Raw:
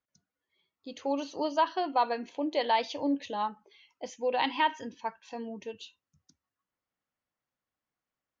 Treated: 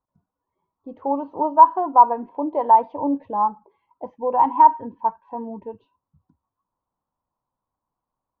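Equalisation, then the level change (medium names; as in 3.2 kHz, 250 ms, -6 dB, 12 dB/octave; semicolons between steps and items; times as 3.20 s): resonant low-pass 980 Hz, resonance Q 7; tilt EQ -3 dB/octave; 0.0 dB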